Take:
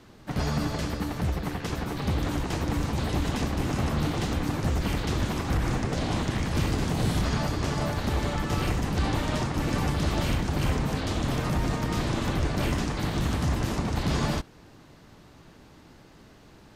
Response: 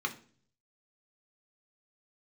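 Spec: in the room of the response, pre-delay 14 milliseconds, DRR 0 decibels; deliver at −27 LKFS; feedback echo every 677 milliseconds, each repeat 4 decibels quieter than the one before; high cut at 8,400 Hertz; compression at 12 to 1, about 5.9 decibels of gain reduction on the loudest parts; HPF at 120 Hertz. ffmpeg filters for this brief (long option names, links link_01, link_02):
-filter_complex "[0:a]highpass=120,lowpass=8400,acompressor=threshold=-30dB:ratio=12,aecho=1:1:677|1354|2031|2708|3385|4062|4739|5416|6093:0.631|0.398|0.25|0.158|0.0994|0.0626|0.0394|0.0249|0.0157,asplit=2[link_01][link_02];[1:a]atrim=start_sample=2205,adelay=14[link_03];[link_02][link_03]afir=irnorm=-1:irlink=0,volume=-5.5dB[link_04];[link_01][link_04]amix=inputs=2:normalize=0,volume=3.5dB"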